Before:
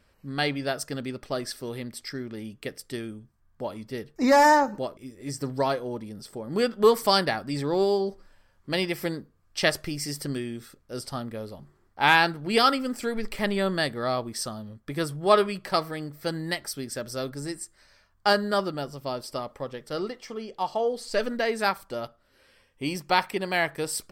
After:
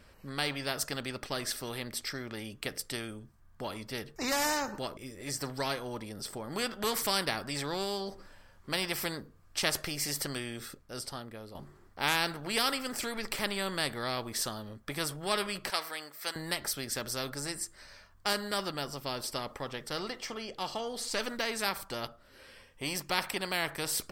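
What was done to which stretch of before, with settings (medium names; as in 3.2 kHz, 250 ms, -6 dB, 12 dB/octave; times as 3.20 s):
10.58–11.55 s: fade out quadratic, to -11 dB
15.70–16.36 s: high-pass 900 Hz
whole clip: spectrum-flattening compressor 2:1; trim -6.5 dB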